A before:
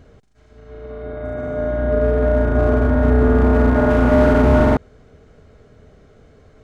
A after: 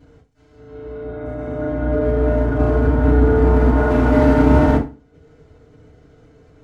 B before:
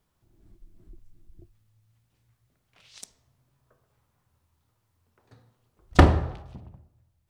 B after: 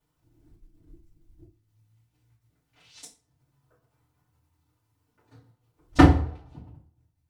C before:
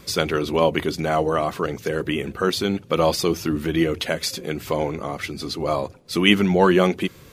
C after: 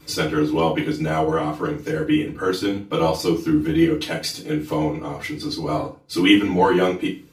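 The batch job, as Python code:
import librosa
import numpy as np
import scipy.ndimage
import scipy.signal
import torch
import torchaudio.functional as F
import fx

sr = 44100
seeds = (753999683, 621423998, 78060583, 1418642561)

y = fx.transient(x, sr, attack_db=0, sustain_db=-8)
y = fx.rev_fdn(y, sr, rt60_s=0.32, lf_ratio=1.2, hf_ratio=0.9, size_ms=20.0, drr_db=-8.5)
y = F.gain(torch.from_numpy(y), -9.5).numpy()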